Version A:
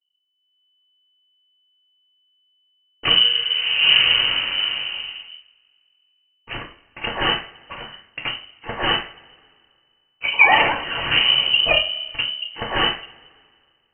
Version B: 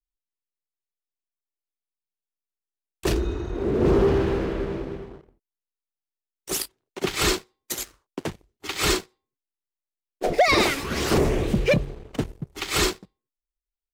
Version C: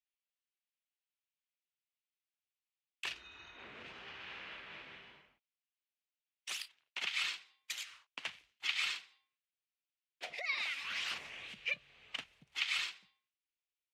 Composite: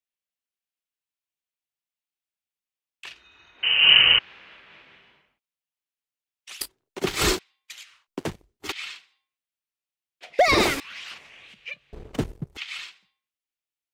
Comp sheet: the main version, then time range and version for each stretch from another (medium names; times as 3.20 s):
C
3.63–4.19 s: from A
6.61–7.39 s: from B
8.08–8.72 s: from B
10.39–10.80 s: from B
11.93–12.57 s: from B